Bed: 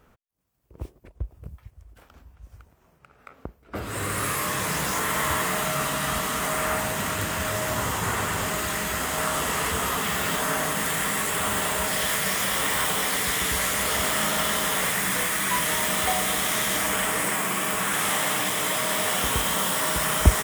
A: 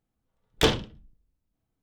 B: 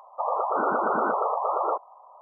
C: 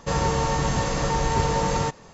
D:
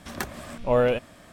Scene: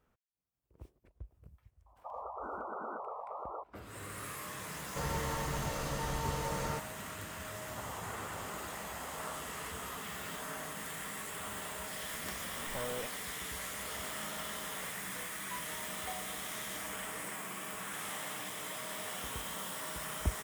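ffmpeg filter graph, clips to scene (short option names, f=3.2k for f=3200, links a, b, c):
-filter_complex "[2:a]asplit=2[a][b];[0:a]volume=-16.5dB[c];[3:a]asplit=2[d][e];[e]adelay=14,volume=-12.5dB[f];[d][f]amix=inputs=2:normalize=0[g];[b]acompressor=threshold=-31dB:ratio=6:attack=3.2:release=140:knee=1:detection=peak[h];[4:a]acompressor=threshold=-26dB:ratio=6:attack=3.2:release=140:knee=1:detection=peak[i];[a]atrim=end=2.21,asetpts=PTS-STARTPTS,volume=-17dB,afade=t=in:d=0.004:c=hsin,afade=t=out:st=2.206:d=0.004:c=hsin,adelay=1860[j];[g]atrim=end=2.13,asetpts=PTS-STARTPTS,volume=-14dB,afade=t=in:d=0.004:c=hsin,afade=t=out:st=2.126:d=0.004:c=hsin,adelay=215649S[k];[h]atrim=end=2.21,asetpts=PTS-STARTPTS,volume=-13.5dB,afade=t=in:d=0.004:c=hsin,afade=t=out:st=2.206:d=0.004:c=hsin,adelay=7590[l];[i]atrim=end=1.32,asetpts=PTS-STARTPTS,volume=-11.5dB,afade=t=in:d=0.004:c=hsin,afade=t=out:st=1.316:d=0.004:c=hsin,adelay=12080[m];[c][j][k][l][m]amix=inputs=5:normalize=0"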